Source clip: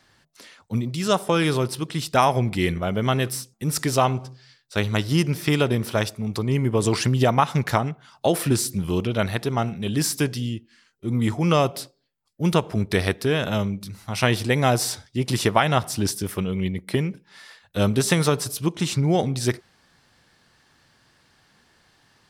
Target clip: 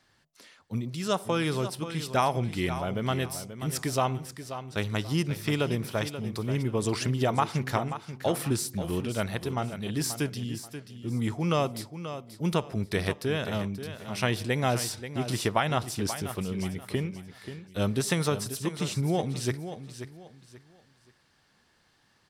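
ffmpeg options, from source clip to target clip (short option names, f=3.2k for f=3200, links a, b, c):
-af "aecho=1:1:533|1066|1599:0.282|0.0817|0.0237,volume=-7dB"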